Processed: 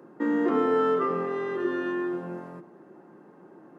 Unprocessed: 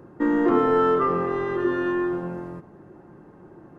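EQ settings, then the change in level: dynamic EQ 970 Hz, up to -4 dB, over -36 dBFS, Q 0.93; HPF 180 Hz 24 dB/oct; notches 50/100/150/200/250/300/350 Hz; -2.0 dB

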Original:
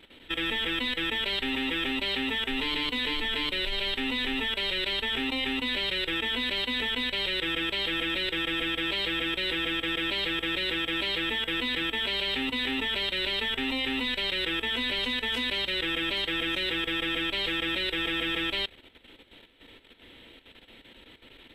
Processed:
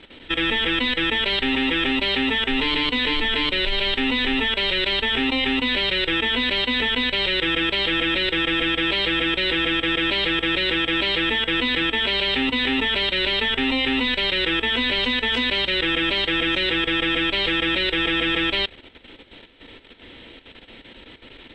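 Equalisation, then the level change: air absorption 96 m; +9.0 dB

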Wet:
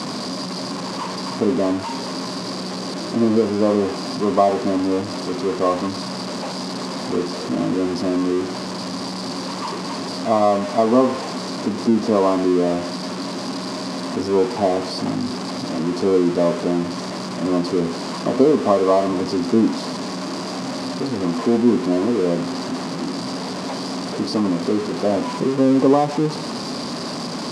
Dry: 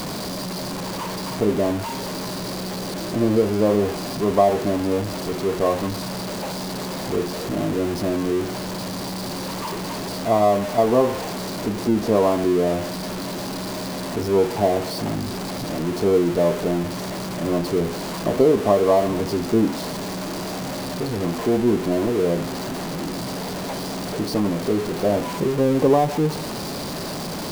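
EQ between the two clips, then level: speaker cabinet 140–8800 Hz, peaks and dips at 250 Hz +8 dB, 1100 Hz +5 dB, 4900 Hz +5 dB; 0.0 dB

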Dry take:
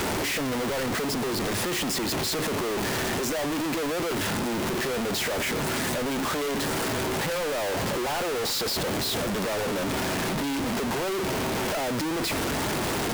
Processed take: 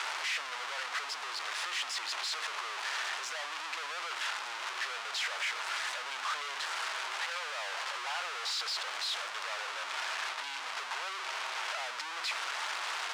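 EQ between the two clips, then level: ladder high-pass 920 Hz, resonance 20%; air absorption 97 m; bell 1800 Hz -3 dB; +3.5 dB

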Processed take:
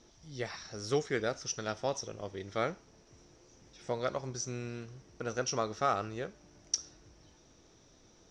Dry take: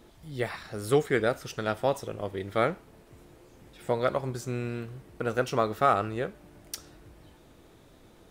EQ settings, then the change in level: ladder low-pass 6000 Hz, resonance 85%; +5.5 dB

